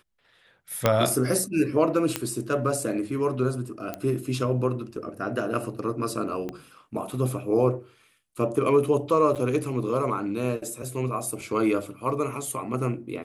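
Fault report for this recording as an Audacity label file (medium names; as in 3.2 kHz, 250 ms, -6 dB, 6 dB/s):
0.860000	0.860000	pop -5 dBFS
2.160000	2.160000	pop -8 dBFS
3.940000	3.940000	pop -16 dBFS
6.490000	6.490000	pop -20 dBFS
9.350000	9.360000	dropout 7.2 ms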